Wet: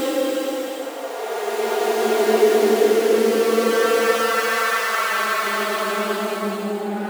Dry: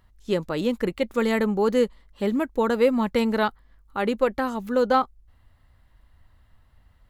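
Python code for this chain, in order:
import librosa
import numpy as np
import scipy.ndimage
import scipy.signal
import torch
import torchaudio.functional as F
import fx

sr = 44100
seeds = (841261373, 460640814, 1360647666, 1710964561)

y = (np.mod(10.0 ** (14.0 / 20.0) * x + 1.0, 2.0) - 1.0) / 10.0 ** (14.0 / 20.0)
y = fx.filter_lfo_highpass(y, sr, shape='sine', hz=3.8, low_hz=290.0, high_hz=1600.0, q=7.8)
y = fx.paulstretch(y, sr, seeds[0], factor=14.0, window_s=0.25, from_s=1.03)
y = y * librosa.db_to_amplitude(-2.0)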